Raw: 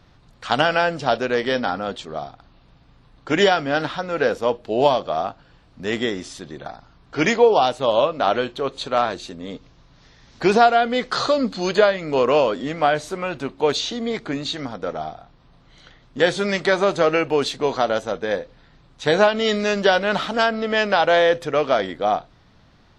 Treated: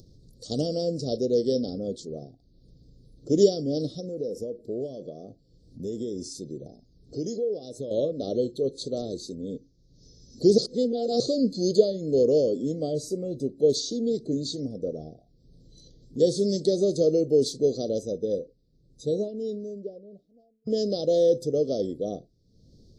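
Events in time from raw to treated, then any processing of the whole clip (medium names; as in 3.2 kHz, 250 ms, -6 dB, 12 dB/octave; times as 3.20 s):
4.00–7.91 s: compression 3:1, threshold -27 dBFS
10.58–11.20 s: reverse
17.70–20.67 s: studio fade out
whole clip: elliptic band-stop 480–4700 Hz, stop band 40 dB; spectral noise reduction 13 dB; upward compressor, threshold -40 dBFS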